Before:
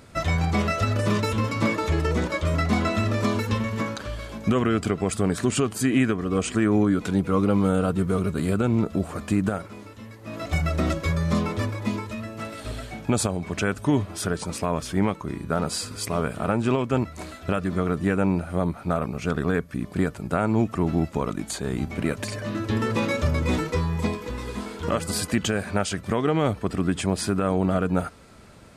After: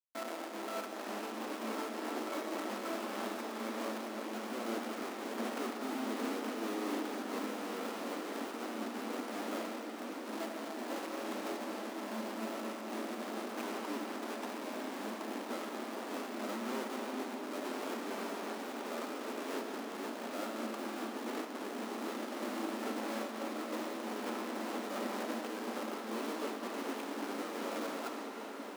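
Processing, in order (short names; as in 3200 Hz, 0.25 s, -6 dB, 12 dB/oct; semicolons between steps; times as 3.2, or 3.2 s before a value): LPF 1700 Hz 12 dB/oct; limiter -19.5 dBFS, peak gain reduction 7.5 dB; Schmitt trigger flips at -35.5 dBFS; rippled Chebyshev high-pass 220 Hz, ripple 3 dB; diffused feedback echo 1.64 s, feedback 63%, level -7 dB; digital reverb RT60 4.2 s, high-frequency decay 0.75×, pre-delay 30 ms, DRR 1 dB; noise-modulated level, depth 50%; gain -6 dB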